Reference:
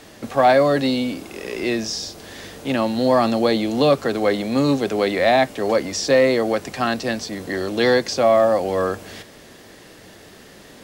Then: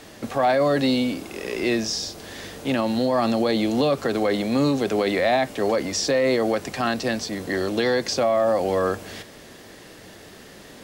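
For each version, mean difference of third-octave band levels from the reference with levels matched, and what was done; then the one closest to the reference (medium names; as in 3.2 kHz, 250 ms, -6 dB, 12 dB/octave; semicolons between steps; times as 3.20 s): 2.5 dB: peak limiter -12.5 dBFS, peak gain reduction 7 dB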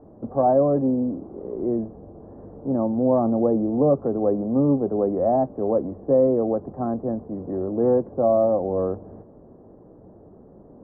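12.0 dB: Bessel low-pass 570 Hz, order 8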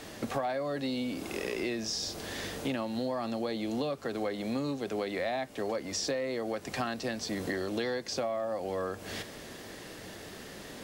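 6.0 dB: compression 12:1, threshold -29 dBFS, peak gain reduction 18.5 dB; trim -1 dB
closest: first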